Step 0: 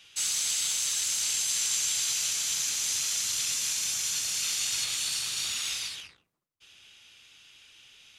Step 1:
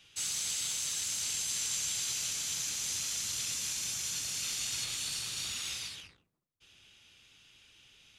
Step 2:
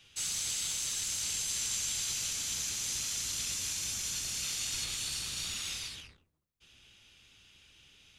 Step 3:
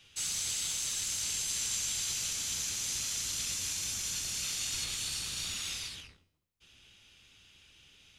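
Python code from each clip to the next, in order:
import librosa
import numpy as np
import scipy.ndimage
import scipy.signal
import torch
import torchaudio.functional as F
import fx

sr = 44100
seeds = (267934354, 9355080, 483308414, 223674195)

y1 = fx.low_shelf(x, sr, hz=460.0, db=9.5)
y1 = y1 * librosa.db_to_amplitude(-6.0)
y2 = fx.octave_divider(y1, sr, octaves=1, level_db=2.0)
y3 = fx.comb_fb(y2, sr, f0_hz=90.0, decay_s=0.64, harmonics='all', damping=0.0, mix_pct=40)
y3 = y3 * librosa.db_to_amplitude(4.0)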